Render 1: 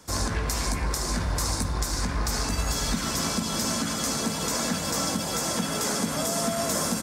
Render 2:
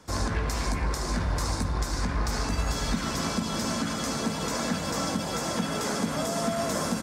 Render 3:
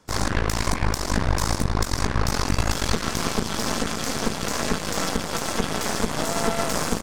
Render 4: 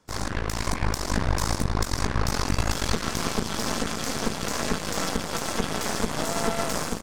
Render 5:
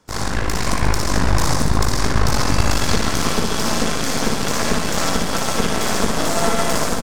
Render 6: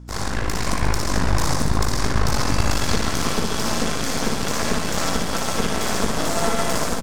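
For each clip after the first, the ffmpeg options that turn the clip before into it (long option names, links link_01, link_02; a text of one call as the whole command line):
ffmpeg -i in.wav -af "highshelf=frequency=6000:gain=-11.5" out.wav
ffmpeg -i in.wav -af "aeval=exprs='0.188*(cos(1*acos(clip(val(0)/0.188,-1,1)))-cos(1*PI/2))+0.0335*(cos(3*acos(clip(val(0)/0.188,-1,1)))-cos(3*PI/2))+0.0841*(cos(4*acos(clip(val(0)/0.188,-1,1)))-cos(4*PI/2))+0.0473*(cos(5*acos(clip(val(0)/0.188,-1,1)))-cos(5*PI/2))+0.0335*(cos(7*acos(clip(val(0)/0.188,-1,1)))-cos(7*PI/2))':channel_layout=same,volume=2dB" out.wav
ffmpeg -i in.wav -af "dynaudnorm=framelen=420:gausssize=3:maxgain=4dB,volume=-6dB" out.wav
ffmpeg -i in.wav -af "aecho=1:1:60|135|228.8|345.9|492.4:0.631|0.398|0.251|0.158|0.1,volume=5.5dB" out.wav
ffmpeg -i in.wav -af "aeval=exprs='val(0)+0.0178*(sin(2*PI*60*n/s)+sin(2*PI*2*60*n/s)/2+sin(2*PI*3*60*n/s)/3+sin(2*PI*4*60*n/s)/4+sin(2*PI*5*60*n/s)/5)':channel_layout=same,volume=-3dB" out.wav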